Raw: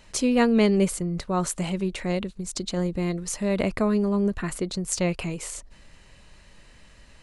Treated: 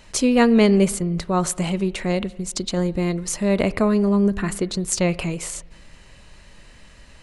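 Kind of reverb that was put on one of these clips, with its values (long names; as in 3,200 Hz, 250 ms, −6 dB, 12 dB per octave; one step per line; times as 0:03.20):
spring reverb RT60 1.2 s, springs 30/35/59 ms, chirp 60 ms, DRR 18.5 dB
level +4.5 dB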